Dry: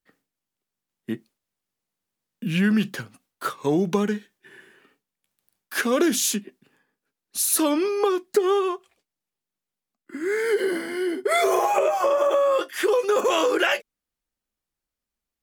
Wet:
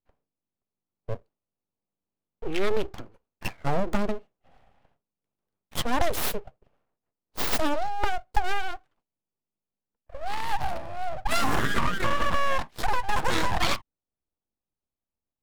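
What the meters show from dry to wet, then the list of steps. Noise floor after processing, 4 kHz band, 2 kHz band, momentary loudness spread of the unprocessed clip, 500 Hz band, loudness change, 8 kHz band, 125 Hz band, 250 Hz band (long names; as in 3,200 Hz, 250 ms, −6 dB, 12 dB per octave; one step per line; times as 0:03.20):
below −85 dBFS, −2.5 dB, −2.5 dB, 13 LU, −11.0 dB, −6.5 dB, −11.0 dB, −1.5 dB, −9.5 dB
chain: adaptive Wiener filter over 25 samples
full-wave rectification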